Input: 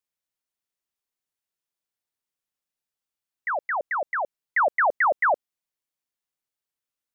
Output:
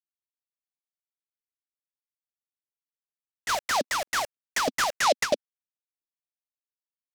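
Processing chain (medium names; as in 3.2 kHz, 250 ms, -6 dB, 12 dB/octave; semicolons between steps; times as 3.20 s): tilt shelf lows +4.5 dB, about 1.3 kHz; hysteresis with a dead band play -39 dBFS; LFO high-pass square 3.1 Hz 250–2400 Hz; 3.49–4.94 s: overdrive pedal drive 33 dB, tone 2.3 kHz, clips at -16 dBFS; delay time shaken by noise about 3.8 kHz, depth 0.065 ms; trim -3 dB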